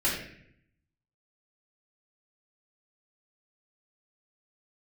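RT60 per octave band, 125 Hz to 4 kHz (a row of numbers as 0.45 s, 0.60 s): 1.1 s, 0.95 s, 0.75 s, 0.60 s, 0.75 s, 0.55 s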